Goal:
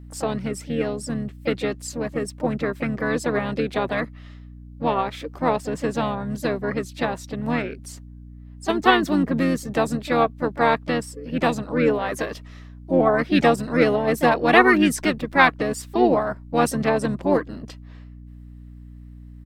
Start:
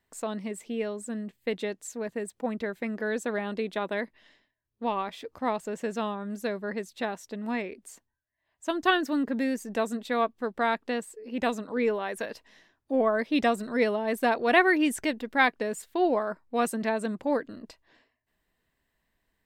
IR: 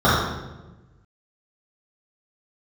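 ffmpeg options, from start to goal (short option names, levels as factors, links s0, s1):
-filter_complex "[0:a]asplit=3[s0][s1][s2];[s1]asetrate=29433,aresample=44100,atempo=1.49831,volume=0.562[s3];[s2]asetrate=52444,aresample=44100,atempo=0.840896,volume=0.251[s4];[s0][s3][s4]amix=inputs=3:normalize=0,aeval=exprs='val(0)+0.00562*(sin(2*PI*60*n/s)+sin(2*PI*2*60*n/s)/2+sin(2*PI*3*60*n/s)/3+sin(2*PI*4*60*n/s)/4+sin(2*PI*5*60*n/s)/5)':c=same,volume=1.88"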